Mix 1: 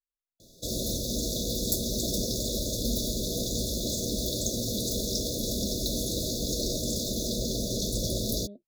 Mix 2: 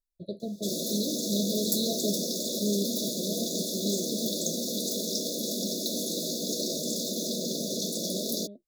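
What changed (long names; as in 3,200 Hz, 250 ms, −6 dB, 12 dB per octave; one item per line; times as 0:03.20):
first voice: unmuted
background: add Butterworth high-pass 160 Hz 96 dB per octave
master: add low-shelf EQ 69 Hz −6.5 dB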